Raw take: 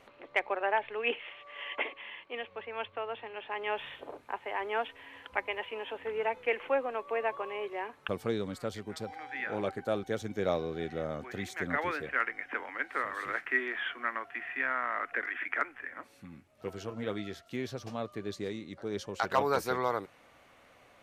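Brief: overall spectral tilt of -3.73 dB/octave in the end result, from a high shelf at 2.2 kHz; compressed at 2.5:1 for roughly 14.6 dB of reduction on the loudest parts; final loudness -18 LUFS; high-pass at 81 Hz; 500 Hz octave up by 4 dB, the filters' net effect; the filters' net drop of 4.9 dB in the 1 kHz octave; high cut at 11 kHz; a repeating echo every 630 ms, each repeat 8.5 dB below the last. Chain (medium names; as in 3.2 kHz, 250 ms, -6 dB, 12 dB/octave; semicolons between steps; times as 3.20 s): high-pass 81 Hz; low-pass 11 kHz; peaking EQ 500 Hz +7 dB; peaking EQ 1 kHz -7.5 dB; treble shelf 2.2 kHz -8 dB; compression 2.5:1, threshold -45 dBFS; feedback delay 630 ms, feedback 38%, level -8.5 dB; trim +26.5 dB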